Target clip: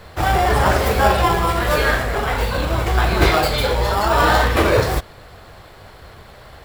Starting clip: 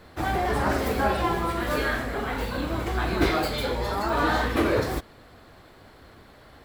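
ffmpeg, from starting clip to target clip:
-filter_complex "[0:a]equalizer=f=270:t=o:w=0.92:g=-12,asplit=2[a][b];[b]acrusher=samples=21:mix=1:aa=0.000001,volume=-9dB[c];[a][c]amix=inputs=2:normalize=0,volume=9dB"

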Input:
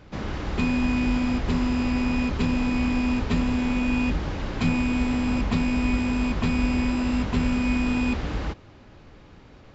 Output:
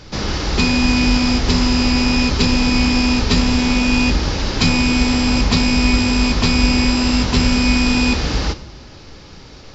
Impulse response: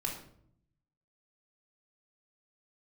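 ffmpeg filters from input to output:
-filter_complex "[0:a]equalizer=f=5.1k:t=o:w=0.95:g=15,asplit=2[a][b];[1:a]atrim=start_sample=2205,asetrate=48510,aresample=44100,highshelf=f=4.6k:g=10.5[c];[b][c]afir=irnorm=-1:irlink=0,volume=-9.5dB[d];[a][d]amix=inputs=2:normalize=0,volume=6dB"

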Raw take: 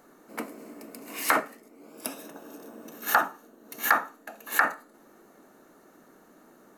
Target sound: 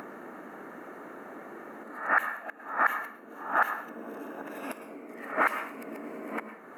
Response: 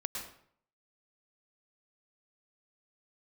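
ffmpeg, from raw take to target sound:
-filter_complex "[0:a]areverse,highpass=f=210:p=1,highshelf=f=3.1k:t=q:w=1.5:g=-13.5,alimiter=limit=-13dB:level=0:latency=1:release=243,acompressor=mode=upward:threshold=-31dB:ratio=2.5,asplit=2[a][b];[1:a]atrim=start_sample=2205[c];[b][c]afir=irnorm=-1:irlink=0,volume=-5.5dB[d];[a][d]amix=inputs=2:normalize=0,volume=-4dB"

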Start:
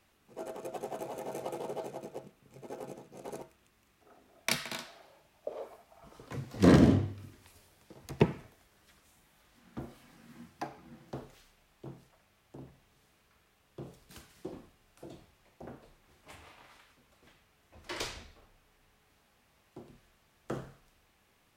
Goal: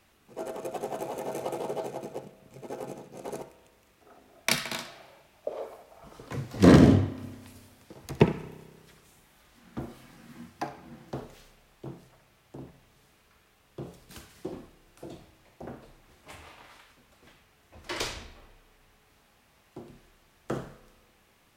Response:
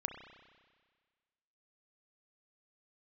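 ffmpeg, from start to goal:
-filter_complex "[0:a]asplit=2[a][b];[1:a]atrim=start_sample=2205,adelay=63[c];[b][c]afir=irnorm=-1:irlink=0,volume=-13.5dB[d];[a][d]amix=inputs=2:normalize=0,volume=5dB"

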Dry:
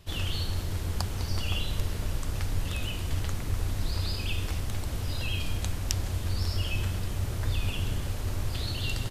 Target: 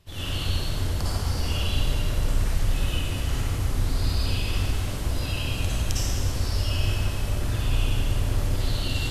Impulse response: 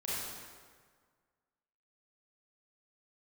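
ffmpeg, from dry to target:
-filter_complex "[1:a]atrim=start_sample=2205,asetrate=28224,aresample=44100[a];[0:a][a]afir=irnorm=-1:irlink=0,volume=-2.5dB"

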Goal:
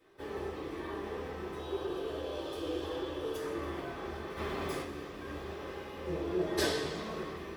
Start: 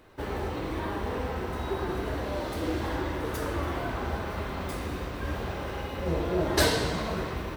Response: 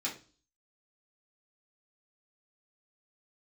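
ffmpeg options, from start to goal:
-filter_complex "[0:a]asettb=1/sr,asplit=3[a][b][c];[a]atrim=end=1.594[d];[b]atrim=start=1.59:end=3.37,asetpts=PTS-STARTPTS,afade=t=in:d=0.004:c=qsin,afade=t=out:st=1.776:d=0.004:c=qsin,equalizer=f=200:t=o:w=0.33:g=-11,equalizer=f=500:t=o:w=0.33:g=7,equalizer=f=2k:t=o:w=0.33:g=-9,equalizer=f=3.15k:t=o:w=0.33:g=8[e];[c]atrim=start=3.366[f];[d][e]acrossfade=d=0.004:c1=hsin:c2=qsin[g];[g][f]acrossfade=d=0.004:c1=qsin:c2=hsin,asplit=3[h][i][j];[h]afade=t=out:st=4.36:d=0.02[k];[i]acontrast=55,afade=t=in:st=4.36:d=0.02,afade=t=out:st=4.81:d=0.02[l];[j]afade=t=in:st=4.81:d=0.02[m];[k][l][m]amix=inputs=3:normalize=0[n];[1:a]atrim=start_sample=2205,asetrate=61740,aresample=44100[o];[n][o]afir=irnorm=-1:irlink=0,volume=-8dB"

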